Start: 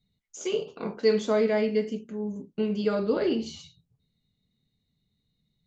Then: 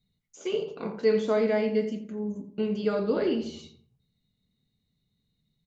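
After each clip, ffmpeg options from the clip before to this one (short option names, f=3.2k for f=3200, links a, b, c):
-filter_complex "[0:a]acrossover=split=3600[a][b];[b]acompressor=threshold=-48dB:ratio=4:attack=1:release=60[c];[a][c]amix=inputs=2:normalize=0,asplit=2[d][e];[e]adelay=86,lowpass=f=1.7k:p=1,volume=-10dB,asplit=2[f][g];[g]adelay=86,lowpass=f=1.7k:p=1,volume=0.45,asplit=2[h][i];[i]adelay=86,lowpass=f=1.7k:p=1,volume=0.45,asplit=2[j][k];[k]adelay=86,lowpass=f=1.7k:p=1,volume=0.45,asplit=2[l][m];[m]adelay=86,lowpass=f=1.7k:p=1,volume=0.45[n];[d][f][h][j][l][n]amix=inputs=6:normalize=0,volume=-1dB"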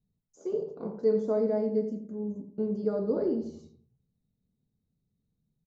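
-af "firequalizer=gain_entry='entry(540,0);entry(2700,-29);entry(5000,-10)':delay=0.05:min_phase=1,volume=-2dB"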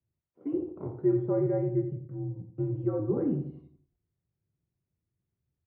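-af "highpass=f=180:t=q:w=0.5412,highpass=f=180:t=q:w=1.307,lowpass=f=2.6k:t=q:w=0.5176,lowpass=f=2.6k:t=q:w=0.7071,lowpass=f=2.6k:t=q:w=1.932,afreqshift=-83"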